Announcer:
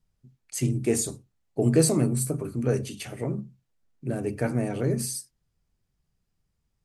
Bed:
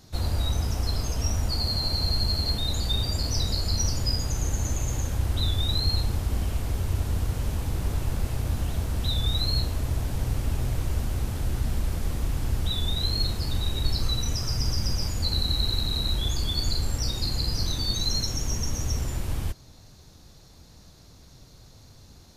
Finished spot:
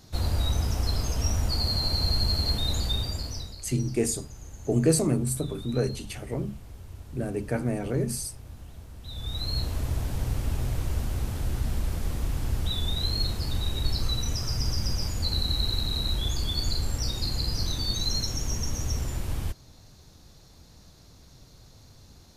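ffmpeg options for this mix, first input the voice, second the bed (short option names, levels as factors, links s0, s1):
-filter_complex "[0:a]adelay=3100,volume=0.841[s0];[1:a]volume=5.62,afade=t=out:st=2.75:d=0.8:silence=0.149624,afade=t=in:st=9.03:d=0.74:silence=0.177828[s1];[s0][s1]amix=inputs=2:normalize=0"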